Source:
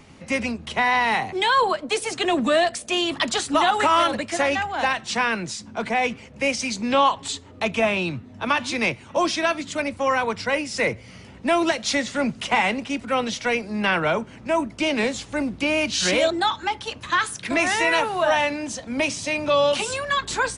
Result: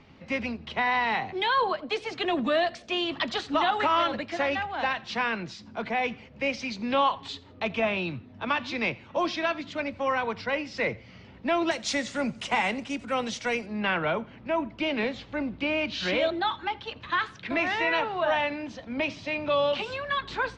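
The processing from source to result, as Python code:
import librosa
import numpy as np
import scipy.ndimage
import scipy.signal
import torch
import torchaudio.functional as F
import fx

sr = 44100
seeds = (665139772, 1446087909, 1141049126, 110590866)

y = fx.lowpass(x, sr, hz=fx.steps((0.0, 4600.0), (11.71, 8700.0), (13.66, 4000.0)), slope=24)
y = fx.echo_feedback(y, sr, ms=85, feedback_pct=34, wet_db=-23)
y = y * 10.0 ** (-5.5 / 20.0)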